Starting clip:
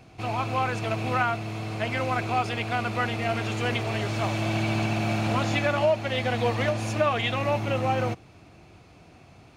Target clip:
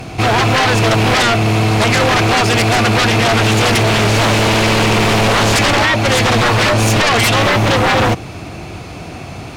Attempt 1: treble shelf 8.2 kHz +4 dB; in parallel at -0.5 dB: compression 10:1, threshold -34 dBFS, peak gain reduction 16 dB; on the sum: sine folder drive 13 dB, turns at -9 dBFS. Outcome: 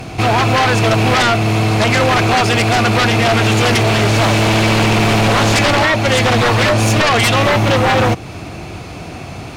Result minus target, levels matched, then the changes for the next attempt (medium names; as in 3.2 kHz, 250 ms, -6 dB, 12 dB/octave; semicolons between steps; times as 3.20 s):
compression: peak gain reduction +6.5 dB
change: compression 10:1, threshold -26.5 dBFS, peak gain reduction 9.5 dB